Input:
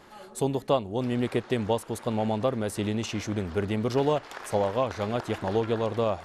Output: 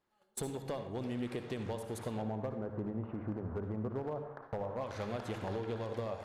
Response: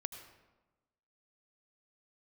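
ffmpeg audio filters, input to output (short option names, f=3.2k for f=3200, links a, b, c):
-filter_complex "[0:a]asettb=1/sr,asplit=3[a][b][c];[a]atrim=end=2.224[d];[b]atrim=start=2.22:end=4.81,asetpts=PTS-STARTPTS,afade=t=in:d=0.004:c=qsin,afade=t=out:st=2.586:d=0.004:c=qsin,lowpass=f=1.3k:w=0.5412,lowpass=f=1.3k:w=1.3066[e];[c]atrim=start=4.806[f];[d][e]acrossfade=d=0.004:c1=hsin:c2=qsin[g];[g][f]acrossfade=d=0.004:c1=qsin:c2=hsin,agate=range=-31dB:threshold=-40dB:ratio=16:detection=peak,acompressor=threshold=-37dB:ratio=6,volume=32dB,asoftclip=hard,volume=-32dB[h];[1:a]atrim=start_sample=2205,asetrate=61740,aresample=44100[i];[h][i]afir=irnorm=-1:irlink=0,volume=6dB"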